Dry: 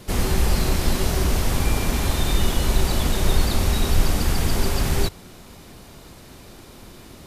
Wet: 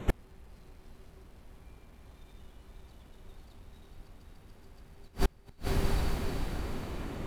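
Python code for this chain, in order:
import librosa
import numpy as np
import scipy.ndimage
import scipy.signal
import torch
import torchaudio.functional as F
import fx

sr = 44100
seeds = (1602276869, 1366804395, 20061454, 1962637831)

y = fx.wiener(x, sr, points=9)
y = fx.echo_diffused(y, sr, ms=503, feedback_pct=50, wet_db=-6.0)
y = fx.gate_flip(y, sr, shuts_db=-16.0, range_db=-36)
y = F.gain(torch.from_numpy(y), 2.5).numpy()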